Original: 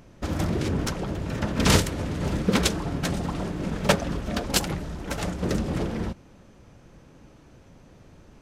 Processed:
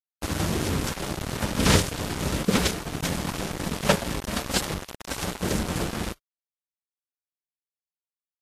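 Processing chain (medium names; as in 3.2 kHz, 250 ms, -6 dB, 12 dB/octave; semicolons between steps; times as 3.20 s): one-bit delta coder 64 kbps, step -27 dBFS; small samples zeroed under -24 dBFS; 2.45–3.02 s: expander -25 dBFS; Vorbis 32 kbps 44.1 kHz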